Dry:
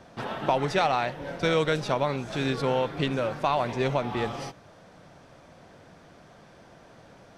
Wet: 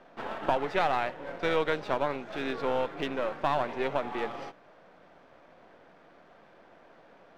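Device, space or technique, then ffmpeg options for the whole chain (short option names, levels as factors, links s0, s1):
crystal radio: -af "highpass=280,lowpass=2700,aeval=exprs='if(lt(val(0),0),0.447*val(0),val(0))':c=same"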